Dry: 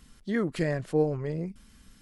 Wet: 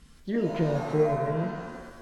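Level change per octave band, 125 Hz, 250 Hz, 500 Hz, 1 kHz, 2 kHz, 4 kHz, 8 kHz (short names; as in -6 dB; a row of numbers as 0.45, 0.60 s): +2.0 dB, +1.0 dB, +2.5 dB, +8.0 dB, -2.0 dB, -0.5 dB, n/a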